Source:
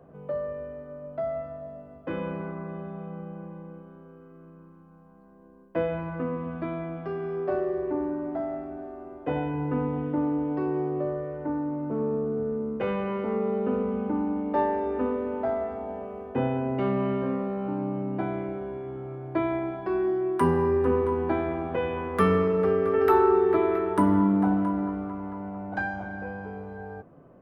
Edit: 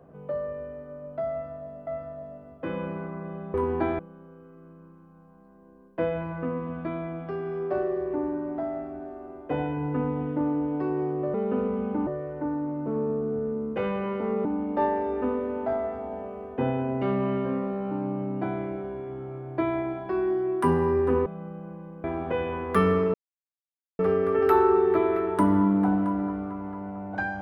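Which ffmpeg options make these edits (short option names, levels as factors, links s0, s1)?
-filter_complex "[0:a]asplit=10[s0][s1][s2][s3][s4][s5][s6][s7][s8][s9];[s0]atrim=end=1.872[s10];[s1]atrim=start=1.308:end=2.982[s11];[s2]atrim=start=21.028:end=21.482[s12];[s3]atrim=start=3.758:end=11.112[s13];[s4]atrim=start=13.488:end=14.222[s14];[s5]atrim=start=11.108:end=13.492[s15];[s6]atrim=start=14.218:end=21.032[s16];[s7]atrim=start=2.978:end=3.762[s17];[s8]atrim=start=21.478:end=22.58,asetpts=PTS-STARTPTS,afade=t=out:st=1.098:d=0.004:c=hsin,apad=pad_dur=0.85[s18];[s9]atrim=start=22.58,asetpts=PTS-STARTPTS,afade=t=in:d=0.004:c=hsin[s19];[s10][s11]acrossfade=d=0.004:c1=hsin:c2=hsin[s20];[s20][s12]acrossfade=d=0.004:c1=hsin:c2=hsin[s21];[s21][s13]acrossfade=d=0.004:c1=hsin:c2=hsin[s22];[s22][s14]acrossfade=d=0.004:c1=hsin:c2=hsin[s23];[s23][s15]acrossfade=d=0.004:c1=hsin:c2=hsin[s24];[s24][s16]acrossfade=d=0.004:c1=hsin:c2=hsin[s25];[s25][s17]acrossfade=d=0.004:c1=hsin:c2=hsin[s26];[s18][s19]concat=n=2:v=0:a=1[s27];[s26][s27]acrossfade=d=0.004:c1=hsin:c2=hsin"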